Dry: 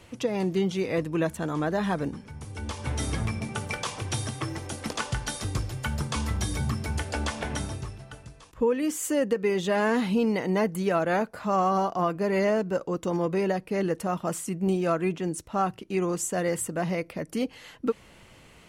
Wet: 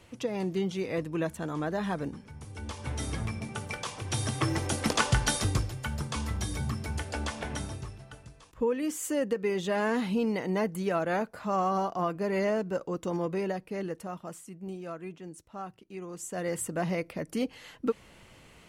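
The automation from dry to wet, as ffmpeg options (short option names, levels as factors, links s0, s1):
-af "volume=7.08,afade=t=in:st=4.03:d=0.51:silence=0.334965,afade=t=out:st=5.35:d=0.4:silence=0.354813,afade=t=out:st=13.15:d=1.3:silence=0.316228,afade=t=in:st=16.1:d=0.64:silence=0.251189"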